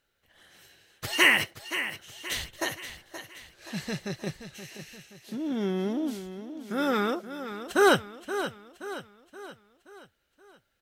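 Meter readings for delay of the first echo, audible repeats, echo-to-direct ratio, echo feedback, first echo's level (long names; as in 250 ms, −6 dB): 525 ms, 4, −10.0 dB, 48%, −11.0 dB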